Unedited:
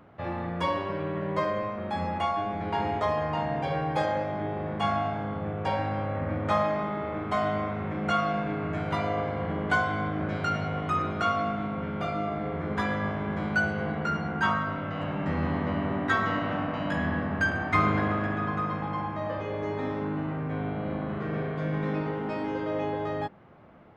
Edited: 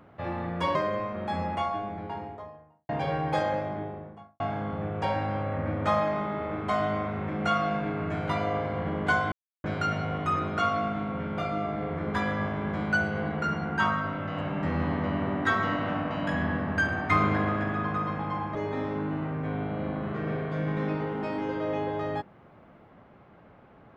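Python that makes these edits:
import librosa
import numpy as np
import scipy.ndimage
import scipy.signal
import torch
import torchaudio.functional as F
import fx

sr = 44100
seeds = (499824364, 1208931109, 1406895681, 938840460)

y = fx.studio_fade_out(x, sr, start_s=1.92, length_s=1.6)
y = fx.studio_fade_out(y, sr, start_s=4.12, length_s=0.91)
y = fx.edit(y, sr, fx.cut(start_s=0.75, length_s=0.63),
    fx.silence(start_s=9.95, length_s=0.32),
    fx.cut(start_s=19.18, length_s=0.43), tone=tone)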